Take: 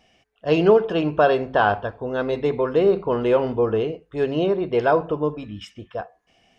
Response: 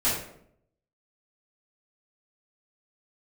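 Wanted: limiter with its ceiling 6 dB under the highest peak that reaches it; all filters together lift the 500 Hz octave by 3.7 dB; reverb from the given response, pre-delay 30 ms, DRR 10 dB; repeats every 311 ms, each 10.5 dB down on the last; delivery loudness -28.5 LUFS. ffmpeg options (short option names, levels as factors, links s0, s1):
-filter_complex "[0:a]equalizer=f=500:t=o:g=4.5,alimiter=limit=0.376:level=0:latency=1,aecho=1:1:311|622|933:0.299|0.0896|0.0269,asplit=2[s0][s1];[1:a]atrim=start_sample=2205,adelay=30[s2];[s1][s2]afir=irnorm=-1:irlink=0,volume=0.0794[s3];[s0][s3]amix=inputs=2:normalize=0,volume=0.335"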